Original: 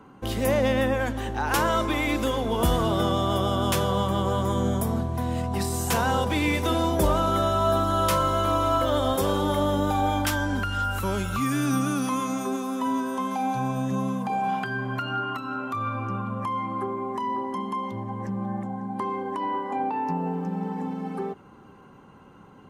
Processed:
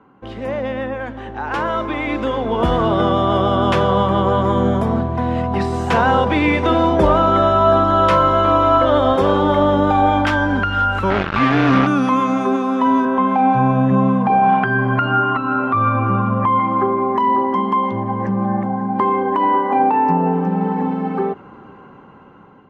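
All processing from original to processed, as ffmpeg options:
ffmpeg -i in.wav -filter_complex "[0:a]asettb=1/sr,asplit=3[link_01][link_02][link_03];[link_01]atrim=end=11.104[link_04];[link_02]atrim=start=11.1:end=11.87,asetpts=PTS-STARTPTS,afade=type=in:duration=0.004:curve=qsin,afade=type=out:start_time=0.766:duration=0.004:curve=qsin,lowpass=frequency=5100:width=0.5412,lowpass=frequency=5100:width=1.3066,acrusher=bits=3:mix=0:aa=0.5[link_05];[link_03]atrim=start=11.866[link_06];[link_04][link_05]acrossfade=duration=0.004:curve1=hsin:curve2=qsin[link_07];[link_07][link_06]acrossfade=duration=0.004:curve1=qsin:curve2=hsin,asettb=1/sr,asplit=3[link_08][link_09][link_10];[link_08]atrim=end=13.054[link_11];[link_09]atrim=start=13.05:end=16.6,asetpts=PTS-STARTPTS,afade=type=in:duration=0.004:curve=qsin,afade=type=out:start_time=3.546:duration=0.004:curve=qsin,acrossover=split=3100[link_12][link_13];[link_13]acompressor=threshold=-59dB:ratio=4:attack=1:release=60[link_14];[link_12][link_14]amix=inputs=2:normalize=0,lowshelf=frequency=92:gain=10[link_15];[link_10]atrim=start=16.596[link_16];[link_11][link_15]acrossfade=duration=0.004:curve1=hsin:curve2=qsin[link_17];[link_17][link_16]acrossfade=duration=0.004:curve1=qsin:curve2=hsin,lowpass=2400,lowshelf=frequency=150:gain=-7,dynaudnorm=framelen=940:gausssize=5:maxgain=14dB" out.wav

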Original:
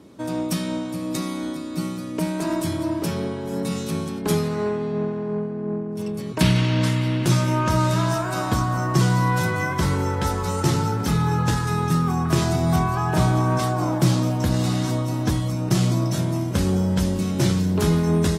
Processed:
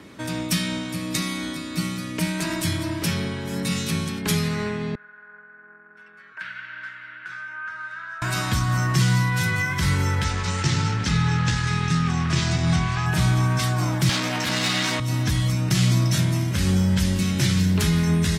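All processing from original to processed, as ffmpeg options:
ffmpeg -i in.wav -filter_complex "[0:a]asettb=1/sr,asplit=3[link_01][link_02][link_03];[link_01]atrim=end=4.954[link_04];[link_02]atrim=start=4.95:end=8.22,asetpts=PTS-STARTPTS,afade=type=in:duration=0.004:curve=qsin,afade=type=out:start_time=3.266:duration=0.004:curve=qsin,bandpass=frequency=1500:width_type=q:width=12,acompressor=mode=upward:threshold=-51dB:ratio=2.5:attack=3.2:release=140:knee=2.83:detection=peak[link_05];[link_03]atrim=start=8.216[link_06];[link_04][link_05]acrossfade=duration=0.004:curve1=hsin:curve2=qsin[link_07];[link_07][link_06]acrossfade=duration=0.004:curve1=qsin:curve2=hsin,asettb=1/sr,asplit=3[link_08][link_09][link_10];[link_08]atrim=end=10.244[link_11];[link_09]atrim=start=10.24:end=13.06,asetpts=PTS-STARTPTS,afade=type=in:duration=0.004:curve=qsin,afade=type=out:start_time=2.816:duration=0.004:curve=qsin,aeval=exprs='sgn(val(0))*max(abs(val(0))-0.02,0)':channel_layout=same,lowpass=frequency=7500:width=0.5412,lowpass=frequency=7500:width=1.3066[link_12];[link_10]atrim=start=13.056[link_13];[link_11][link_12]acrossfade=duration=0.004:curve1=hsin:curve2=qsin[link_14];[link_14][link_13]acrossfade=duration=0.004:curve1=qsin:curve2=hsin,asettb=1/sr,asplit=3[link_15][link_16][link_17];[link_15]atrim=end=14.094[link_18];[link_16]atrim=start=14.09:end=15,asetpts=PTS-STARTPTS,afade=type=in:duration=0.004:curve=qsin,afade=type=out:start_time=0.906:duration=0.004:curve=qsin,asplit=2[link_19][link_20];[link_20]highpass=frequency=720:poles=1,volume=24dB,asoftclip=type=tanh:threshold=-8.5dB[link_21];[link_19][link_21]amix=inputs=2:normalize=0,lowpass=frequency=2500:poles=1,volume=-6dB,highpass=180[link_22];[link_17]atrim=start=14.996[link_23];[link_18][link_22]acrossfade=duration=0.004:curve1=hsin:curve2=qsin[link_24];[link_24][link_23]acrossfade=duration=0.004:curve1=qsin:curve2=hsin,equalizer=frequency=1900:width=0.87:gain=14,alimiter=limit=-10dB:level=0:latency=1:release=146,acrossover=split=200|3000[link_25][link_26][link_27];[link_26]acompressor=threshold=-58dB:ratio=1.5[link_28];[link_25][link_28][link_27]amix=inputs=3:normalize=0,volume=4dB" out.wav

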